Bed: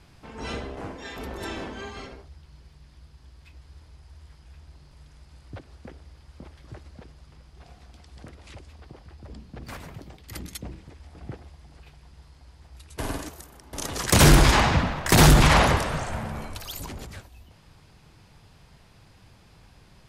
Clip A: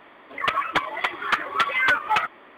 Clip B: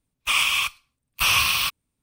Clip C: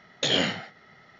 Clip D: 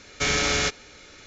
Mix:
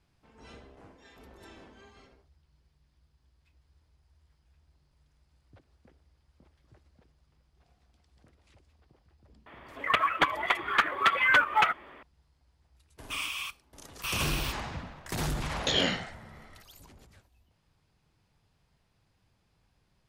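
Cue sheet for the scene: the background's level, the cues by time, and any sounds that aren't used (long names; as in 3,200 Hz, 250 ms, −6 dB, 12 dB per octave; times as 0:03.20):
bed −17.5 dB
0:09.46: mix in A −2 dB
0:12.83: mix in B −14 dB
0:15.44: mix in C −3 dB
not used: D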